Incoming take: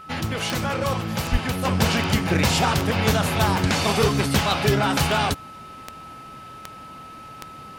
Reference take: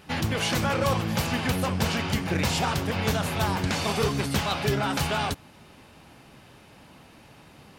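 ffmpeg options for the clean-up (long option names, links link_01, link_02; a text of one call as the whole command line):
ffmpeg -i in.wav -filter_complex "[0:a]adeclick=threshold=4,bandreject=frequency=1300:width=30,asplit=3[link_01][link_02][link_03];[link_01]afade=type=out:start_time=1.31:duration=0.02[link_04];[link_02]highpass=frequency=140:width=0.5412,highpass=frequency=140:width=1.3066,afade=type=in:start_time=1.31:duration=0.02,afade=type=out:start_time=1.43:duration=0.02[link_05];[link_03]afade=type=in:start_time=1.43:duration=0.02[link_06];[link_04][link_05][link_06]amix=inputs=3:normalize=0,asetnsamples=nb_out_samples=441:pad=0,asendcmd='1.65 volume volume -5.5dB',volume=0dB" out.wav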